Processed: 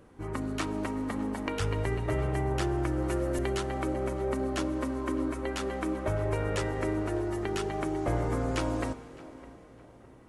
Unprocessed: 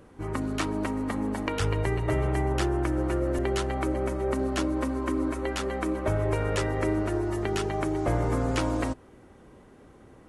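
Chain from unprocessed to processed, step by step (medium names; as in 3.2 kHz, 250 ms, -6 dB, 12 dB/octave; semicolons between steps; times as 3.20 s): 3.02–3.53 s: treble shelf 3.6 kHz +8.5 dB; tape echo 609 ms, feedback 40%, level -17 dB, low-pass 2.2 kHz; plate-style reverb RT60 4 s, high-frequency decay 0.9×, DRR 15 dB; trim -3.5 dB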